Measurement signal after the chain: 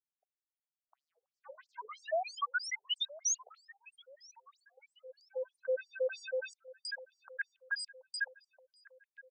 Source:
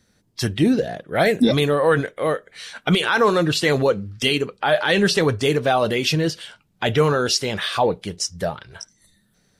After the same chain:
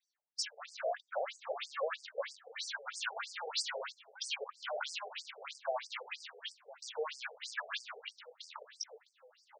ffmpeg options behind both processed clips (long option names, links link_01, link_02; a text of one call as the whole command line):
ffmpeg -i in.wav -filter_complex "[0:a]bandreject=frequency=50:width_type=h:width=6,bandreject=frequency=100:width_type=h:width=6,bandreject=frequency=150:width_type=h:width=6,bandreject=frequency=200:width_type=h:width=6,bandreject=frequency=250:width_type=h:width=6,bandreject=frequency=300:width_type=h:width=6,bandreject=frequency=350:width_type=h:width=6,agate=range=-17dB:threshold=-47dB:ratio=16:detection=peak,equalizer=frequency=110:width=4.1:gain=-13.5,alimiter=limit=-13dB:level=0:latency=1:release=12,volume=23dB,asoftclip=hard,volume=-23dB,flanger=delay=0.8:depth=2.8:regen=-20:speed=0.21:shape=triangular,asoftclip=type=tanh:threshold=-31dB,asplit=2[link_01][link_02];[link_02]adelay=1028,lowpass=frequency=2700:poles=1,volume=-19dB,asplit=2[link_03][link_04];[link_04]adelay=1028,lowpass=frequency=2700:poles=1,volume=0.54,asplit=2[link_05][link_06];[link_06]adelay=1028,lowpass=frequency=2700:poles=1,volume=0.54,asplit=2[link_07][link_08];[link_08]adelay=1028,lowpass=frequency=2700:poles=1,volume=0.54[link_09];[link_03][link_05][link_07][link_09]amix=inputs=4:normalize=0[link_10];[link_01][link_10]amix=inputs=2:normalize=0,afftfilt=real='re*between(b*sr/1024,550*pow(6600/550,0.5+0.5*sin(2*PI*3.1*pts/sr))/1.41,550*pow(6600/550,0.5+0.5*sin(2*PI*3.1*pts/sr))*1.41)':imag='im*between(b*sr/1024,550*pow(6600/550,0.5+0.5*sin(2*PI*3.1*pts/sr))/1.41,550*pow(6600/550,0.5+0.5*sin(2*PI*3.1*pts/sr))*1.41)':win_size=1024:overlap=0.75,volume=3.5dB" out.wav